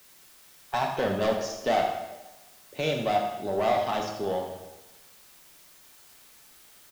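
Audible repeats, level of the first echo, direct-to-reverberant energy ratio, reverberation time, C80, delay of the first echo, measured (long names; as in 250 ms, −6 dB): 1, −10.5 dB, 1.0 dB, 1.1 s, 6.0 dB, 80 ms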